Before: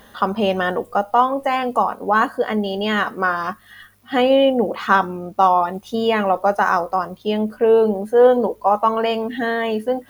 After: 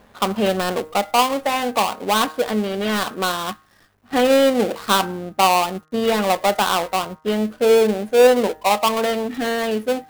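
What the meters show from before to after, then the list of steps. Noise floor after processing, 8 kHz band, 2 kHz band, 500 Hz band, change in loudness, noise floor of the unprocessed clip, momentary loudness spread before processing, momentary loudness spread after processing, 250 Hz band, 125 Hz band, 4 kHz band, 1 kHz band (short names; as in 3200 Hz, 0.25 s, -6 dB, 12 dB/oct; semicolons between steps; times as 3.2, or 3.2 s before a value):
-55 dBFS, n/a, -1.5 dB, -0.5 dB, -0.5 dB, -49 dBFS, 8 LU, 8 LU, 0.0 dB, 0.0 dB, +5.5 dB, -2.0 dB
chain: switching dead time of 0.21 ms; de-hum 155.8 Hz, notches 13; mismatched tape noise reduction decoder only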